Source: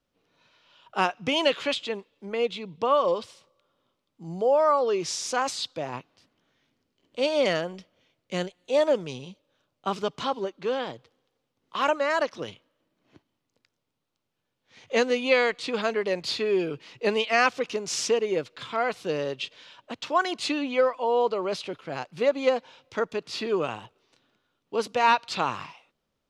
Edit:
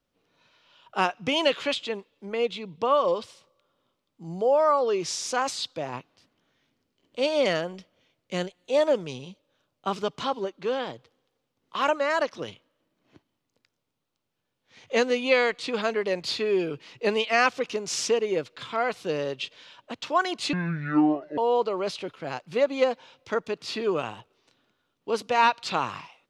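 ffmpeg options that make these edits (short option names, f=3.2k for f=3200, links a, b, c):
-filter_complex "[0:a]asplit=3[a][b][c];[a]atrim=end=20.534[d];[b]atrim=start=20.53:end=21.03,asetpts=PTS-STARTPTS,asetrate=26019,aresample=44100[e];[c]atrim=start=21.026[f];[d][e]acrossfade=d=0.004:c1=hsin:c2=hsin[g];[g][f]acrossfade=d=0.004:c1=hsin:c2=hsin"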